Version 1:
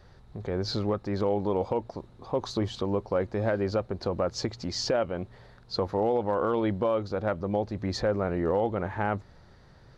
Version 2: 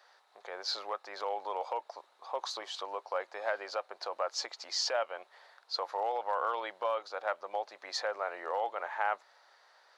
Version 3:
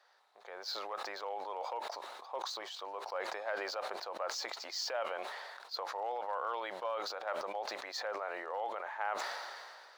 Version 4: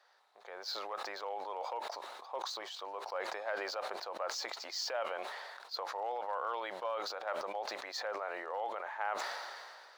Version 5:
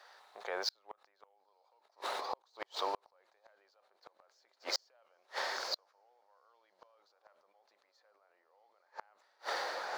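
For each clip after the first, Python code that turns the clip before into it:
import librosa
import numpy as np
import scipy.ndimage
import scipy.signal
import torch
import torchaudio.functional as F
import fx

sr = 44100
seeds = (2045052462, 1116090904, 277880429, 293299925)

y1 = scipy.signal.sosfilt(scipy.signal.butter(4, 680.0, 'highpass', fs=sr, output='sos'), x)
y2 = scipy.signal.medfilt(y1, 3)
y2 = fx.sustainer(y2, sr, db_per_s=28.0)
y2 = y2 * 10.0 ** (-5.5 / 20.0)
y3 = y2
y4 = fx.echo_diffused(y3, sr, ms=932, feedback_pct=59, wet_db=-13.0)
y4 = fx.gate_flip(y4, sr, shuts_db=-31.0, range_db=-41)
y4 = y4 * 10.0 ** (9.0 / 20.0)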